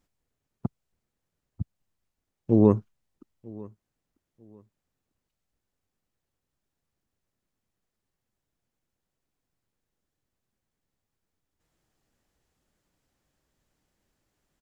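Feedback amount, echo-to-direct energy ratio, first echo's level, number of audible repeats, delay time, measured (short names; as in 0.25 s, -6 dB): 26%, -22.0 dB, -22.5 dB, 2, 0.945 s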